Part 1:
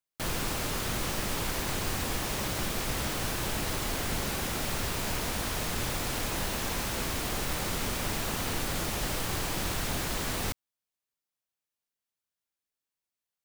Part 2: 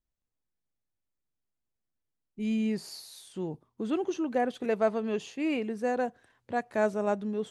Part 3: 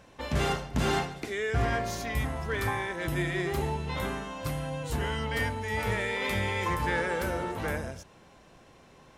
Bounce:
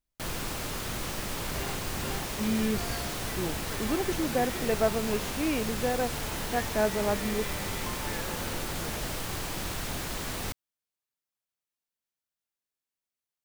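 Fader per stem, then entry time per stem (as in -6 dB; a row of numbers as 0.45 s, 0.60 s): -2.5 dB, 0.0 dB, -11.0 dB; 0.00 s, 0.00 s, 1.20 s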